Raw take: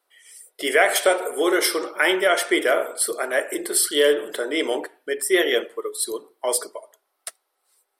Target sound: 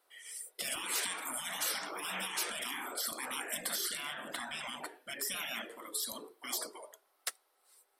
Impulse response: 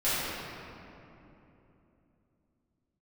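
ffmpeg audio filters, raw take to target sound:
-filter_complex "[0:a]alimiter=limit=-13.5dB:level=0:latency=1:release=211,asettb=1/sr,asplit=3[link_01][link_02][link_03];[link_01]atrim=end=3.974[link_04];[link_02]atrim=start=3.97:end=4.77,asetpts=PTS-STARTPTS,afade=type=in:duration=0.004:curve=qsin,afade=type=out:start_time=0.796:duration=0.004:curve=qsin,highshelf=frequency=3700:gain=-8.5[link_05];[link_03]atrim=start=4.766[link_06];[link_04][link_05]acrossfade=duration=0.004:curve1=hsin:curve2=qsin[link_07];[link_07][link_06]acrossfade=duration=0.004:curve1=qsin:curve2=hsin,afftfilt=real='re*lt(hypot(re,im),0.0562)':imag='im*lt(hypot(re,im),0.0562)':win_size=1024:overlap=0.75"

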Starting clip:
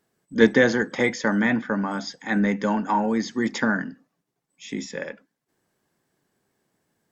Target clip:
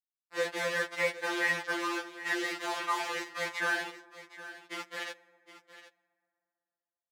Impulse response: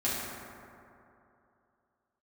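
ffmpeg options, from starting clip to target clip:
-filter_complex "[0:a]lowpass=2600,alimiter=limit=-12.5dB:level=0:latency=1:release=147,afreqshift=47,aeval=exprs='0.266*(cos(1*acos(clip(val(0)/0.266,-1,1)))-cos(1*PI/2))+0.0188*(cos(4*acos(clip(val(0)/0.266,-1,1)))-cos(4*PI/2))':channel_layout=same,acrusher=bits=4:mix=0:aa=0.000001,bandpass=frequency=2000:width_type=q:width=0.59:csg=0,aecho=1:1:765:0.178,asplit=2[link_01][link_02];[1:a]atrim=start_sample=2205[link_03];[link_02][link_03]afir=irnorm=-1:irlink=0,volume=-27.5dB[link_04];[link_01][link_04]amix=inputs=2:normalize=0,afftfilt=real='re*2.83*eq(mod(b,8),0)':imag='im*2.83*eq(mod(b,8),0)':win_size=2048:overlap=0.75"

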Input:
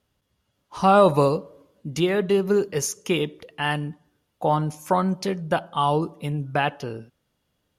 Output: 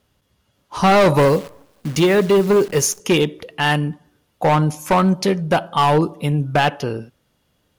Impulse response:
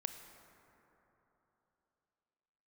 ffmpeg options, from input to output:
-filter_complex "[0:a]asettb=1/sr,asplit=3[link_01][link_02][link_03];[link_01]atrim=end=1.174[link_04];[link_02]atrim=start=1.17:end=3,asetpts=PTS-STARTPTS,afade=type=in:duration=0.004:curve=qsin,afade=type=out:start_time=1.826:duration=0.004:curve=qsin,acrusher=bits=8:dc=4:mix=0:aa=0.000001[link_05];[link_03]atrim=start=2.996[link_06];[link_04][link_05]acrossfade=duration=0.004:curve1=hsin:curve2=qsin[link_07];[link_07][link_06]acrossfade=duration=0.004:curve1=qsin:curve2=hsin,asplit=2[link_08][link_09];[1:a]atrim=start_sample=2205,atrim=end_sample=3969[link_10];[link_09][link_10]afir=irnorm=-1:irlink=0,volume=-11.5dB[link_11];[link_08][link_11]amix=inputs=2:normalize=0,volume=16.5dB,asoftclip=hard,volume=-16.5dB,volume=6.5dB"

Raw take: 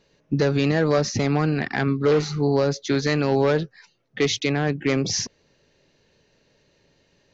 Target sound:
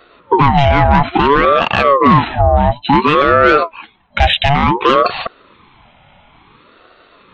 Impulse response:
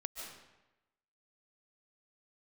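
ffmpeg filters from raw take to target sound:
-filter_complex "[0:a]asplit=3[link_01][link_02][link_03];[link_01]afade=type=out:start_time=2.41:duration=0.02[link_04];[link_02]equalizer=frequency=500:width_type=o:width=1:gain=-7,equalizer=frequency=1000:width_type=o:width=1:gain=-8,equalizer=frequency=2000:width_type=o:width=1:gain=-11,afade=type=in:start_time=2.41:duration=0.02,afade=type=out:start_time=2.92:duration=0.02[link_05];[link_03]afade=type=in:start_time=2.92:duration=0.02[link_06];[link_04][link_05][link_06]amix=inputs=3:normalize=0,afftfilt=real='re*between(b*sr/4096,170,3600)':imag='im*between(b*sr/4096,170,3600)':win_size=4096:overlap=0.75,asoftclip=type=tanh:threshold=-15.5dB,alimiter=level_in=21dB:limit=-1dB:release=50:level=0:latency=1,aeval=exprs='val(0)*sin(2*PI*640*n/s+640*0.45/0.57*sin(2*PI*0.57*n/s))':channel_layout=same"

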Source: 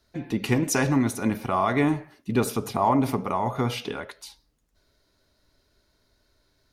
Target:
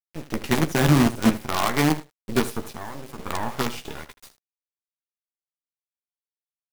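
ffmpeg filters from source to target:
ffmpeg -i in.wav -filter_complex "[0:a]asettb=1/sr,asplit=3[link_01][link_02][link_03];[link_01]atrim=end=0.614[link_04];[link_02]atrim=start=0.61:end=1.3,asetpts=PTS-STARTPTS,afade=type=in:duration=0.004:curve=qsin,afade=type=out:start_time=0.686:duration=0.004:curve=qsin,bass=frequency=250:gain=7,treble=frequency=4000:gain=-11[link_05];[link_03]atrim=start=1.296[link_06];[link_04][link_05]acrossfade=duration=0.004:curve1=hsin:curve2=qsin[link_07];[link_07][link_06]acrossfade=duration=0.004:curve1=qsin:curve2=hsin,asplit=3[link_08][link_09][link_10];[link_08]afade=type=out:start_time=2.72:duration=0.02[link_11];[link_09]acompressor=threshold=-34dB:ratio=3,afade=type=in:start_time=2.72:duration=0.02,afade=type=out:start_time=3.18:duration=0.02[link_12];[link_10]afade=type=in:start_time=3.18:duration=0.02[link_13];[link_11][link_12][link_13]amix=inputs=3:normalize=0,aeval=exprs='sgn(val(0))*max(abs(val(0))-0.00422,0)':channel_layout=same,acrusher=bits=4:dc=4:mix=0:aa=0.000001,aecho=1:1:13|79:0.422|0.168" out.wav

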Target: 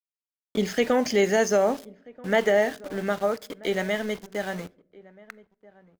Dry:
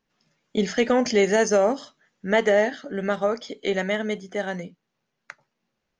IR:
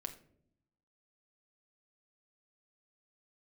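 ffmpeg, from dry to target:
-filter_complex "[0:a]aeval=exprs='val(0)*gte(abs(val(0)),0.0178)':channel_layout=same,asplit=2[link_01][link_02];[link_02]adelay=1283,volume=-22dB,highshelf=frequency=4000:gain=-28.9[link_03];[link_01][link_03]amix=inputs=2:normalize=0,asplit=2[link_04][link_05];[1:a]atrim=start_sample=2205[link_06];[link_05][link_06]afir=irnorm=-1:irlink=0,volume=-10dB[link_07];[link_04][link_07]amix=inputs=2:normalize=0,volume=-3.5dB"

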